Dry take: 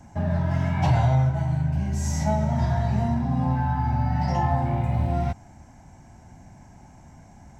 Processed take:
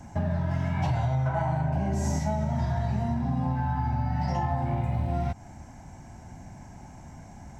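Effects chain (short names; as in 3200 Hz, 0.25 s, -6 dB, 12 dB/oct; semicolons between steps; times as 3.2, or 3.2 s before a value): 1.25–2.18 bell 1200 Hz -> 420 Hz +14.5 dB 2.5 oct; compressor 4:1, threshold -28 dBFS, peak gain reduction 10.5 dB; gain +3 dB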